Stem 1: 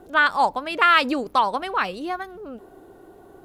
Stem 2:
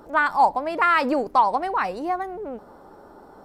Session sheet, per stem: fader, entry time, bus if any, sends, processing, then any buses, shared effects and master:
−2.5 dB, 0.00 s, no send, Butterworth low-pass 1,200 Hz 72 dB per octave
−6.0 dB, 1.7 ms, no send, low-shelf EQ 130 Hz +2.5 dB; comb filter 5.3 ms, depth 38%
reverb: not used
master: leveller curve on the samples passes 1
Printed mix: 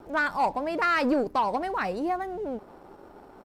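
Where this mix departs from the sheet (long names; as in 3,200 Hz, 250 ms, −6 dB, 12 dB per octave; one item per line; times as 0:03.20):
stem 1 −2.5 dB → −10.0 dB
stem 2: missing comb filter 5.3 ms, depth 38%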